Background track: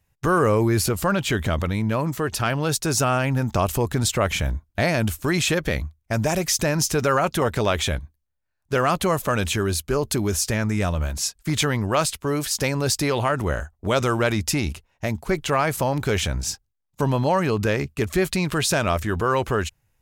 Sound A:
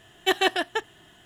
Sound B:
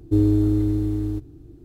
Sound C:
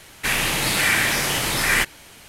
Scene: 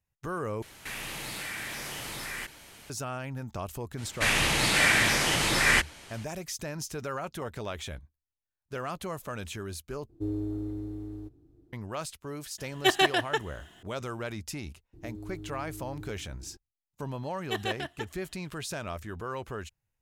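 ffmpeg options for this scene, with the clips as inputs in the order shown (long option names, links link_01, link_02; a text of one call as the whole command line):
ffmpeg -i bed.wav -i cue0.wav -i cue1.wav -i cue2.wav -filter_complex "[3:a]asplit=2[link_01][link_02];[2:a]asplit=2[link_03][link_04];[1:a]asplit=2[link_05][link_06];[0:a]volume=-15dB[link_07];[link_01]acompressor=threshold=-37dB:ratio=3:attack=9:release=29:knee=1:detection=peak[link_08];[link_02]lowpass=9200[link_09];[link_03]equalizer=frequency=670:width=0.58:gain=6.5[link_10];[link_04]acompressor=threshold=-32dB:ratio=6:attack=3.2:release=140:knee=1:detection=peak[link_11];[link_07]asplit=3[link_12][link_13][link_14];[link_12]atrim=end=0.624[link_15];[link_08]atrim=end=2.28,asetpts=PTS-STARTPTS,volume=-5.5dB[link_16];[link_13]atrim=start=2.896:end=10.094[link_17];[link_10]atrim=end=1.64,asetpts=PTS-STARTPTS,volume=-17dB[link_18];[link_14]atrim=start=11.726[link_19];[link_09]atrim=end=2.28,asetpts=PTS-STARTPTS,volume=-3dB,afade=type=in:duration=0.02,afade=type=out:start_time=2.26:duration=0.02,adelay=175077S[link_20];[link_05]atrim=end=1.25,asetpts=PTS-STARTPTS,volume=-1dB,afade=type=in:duration=0.004:curve=hsin,afade=type=out:start_time=1.246:duration=0.004:curve=hsin,adelay=12580[link_21];[link_11]atrim=end=1.64,asetpts=PTS-STARTPTS,volume=-8.5dB,afade=type=in:duration=0.004:curve=hsin,afade=type=out:start_time=1.636:duration=0.004:curve=hsin,adelay=14930[link_22];[link_06]atrim=end=1.25,asetpts=PTS-STARTPTS,volume=-11dB,afade=type=in:duration=0.004:curve=hsin,afade=type=out:start_time=1.246:duration=0.004:curve=hsin,adelay=17240[link_23];[link_15][link_16]acrossfade=duration=0.004:curve1=hsin:curve2=hsin[link_24];[link_24][link_17]acrossfade=duration=0.004:curve1=hsin:curve2=hsin[link_25];[link_25][link_18]acrossfade=duration=0.004:curve1=hsin:curve2=hsin[link_26];[link_26][link_19]acrossfade=duration=0.004:curve1=hsin:curve2=hsin[link_27];[link_27][link_20][link_21][link_22][link_23]amix=inputs=5:normalize=0" out.wav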